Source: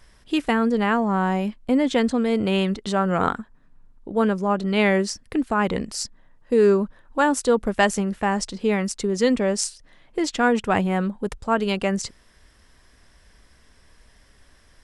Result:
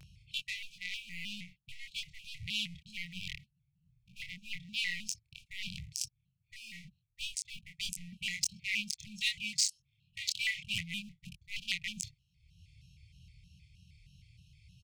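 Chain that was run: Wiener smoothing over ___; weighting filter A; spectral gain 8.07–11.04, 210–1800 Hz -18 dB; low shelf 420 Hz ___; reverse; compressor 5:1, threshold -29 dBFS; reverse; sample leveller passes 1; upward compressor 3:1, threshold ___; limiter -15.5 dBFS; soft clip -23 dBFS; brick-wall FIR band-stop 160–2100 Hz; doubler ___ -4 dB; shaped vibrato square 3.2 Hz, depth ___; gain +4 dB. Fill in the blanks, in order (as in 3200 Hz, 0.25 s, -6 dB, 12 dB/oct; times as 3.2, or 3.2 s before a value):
41 samples, +9 dB, -45 dBFS, 25 ms, 160 cents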